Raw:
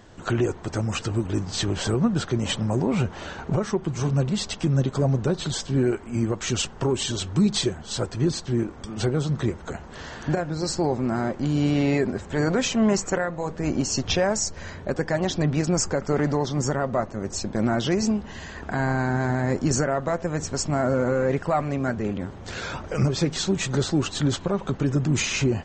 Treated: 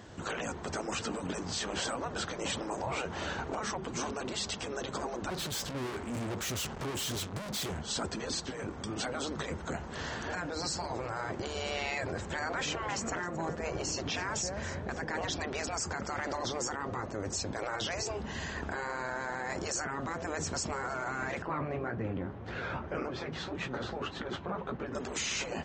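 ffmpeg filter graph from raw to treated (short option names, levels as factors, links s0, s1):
-filter_complex "[0:a]asettb=1/sr,asplit=3[s0][s1][s2];[s0]atrim=end=5.304[s3];[s1]atrim=start=5.3:end=7.81,asetpts=PTS-STARTPTS,afade=t=in:d=0.004:c=qsin,afade=t=out:st=2.506:d=0.004:c=qsin,acontrast=77,aeval=exprs='(tanh(50.1*val(0)+0.55)-tanh(0.55))/50.1':c=same[s4];[s2]atrim=start=7.806[s5];[s3][s4]acrossfade=d=0.004:c1=hsin:c2=qsin[s6];[s6][s5]acrossfade=d=0.004:c1=qsin:c2=hsin,asettb=1/sr,asplit=3[s7][s8][s9];[s7]atrim=end=12.394[s10];[s8]atrim=start=12.39:end=15.3,asetpts=PTS-STARTPTS,afade=t=in:d=0.004:c=qsin,afade=t=out:st=2.906:d=0.004:c=qsin,highshelf=f=4100:g=-8.5,aecho=1:1:266|532|798:0.133|0.0493|0.0183,atrim=end_sample=128331[s11];[s9]atrim=start=15.296[s12];[s10][s11]acrossfade=d=0.004:c1=hsin:c2=qsin[s13];[s13][s12]acrossfade=d=0.004:c1=qsin:c2=hsin,asettb=1/sr,asplit=3[s14][s15][s16];[s14]atrim=end=21.424[s17];[s15]atrim=start=21.42:end=24.95,asetpts=PTS-STARTPTS,afade=t=in:d=0.004:c=qsin,afade=t=out:st=3.526:d=0.004:c=qsin,lowpass=2300,asplit=2[s18][s19];[s19]adelay=17,volume=0.282[s20];[s18][s20]amix=inputs=2:normalize=0,atrim=end_sample=155673,flanger=delay=4.8:depth=9.7:regen=-47:speed=1.8:shape=triangular[s21];[s16]atrim=start=24.946[s22];[s17][s21]acrossfade=d=0.004:c1=hsin:c2=qsin[s23];[s23][s22]acrossfade=d=0.004:c1=qsin:c2=hsin,afftfilt=real='re*lt(hypot(re,im),0.2)':imag='im*lt(hypot(re,im),0.2)':win_size=1024:overlap=0.75,highpass=52,alimiter=level_in=1.12:limit=0.0631:level=0:latency=1:release=20,volume=0.891"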